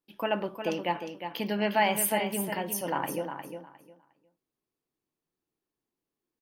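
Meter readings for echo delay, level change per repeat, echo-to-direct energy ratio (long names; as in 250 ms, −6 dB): 357 ms, −14.0 dB, −8.0 dB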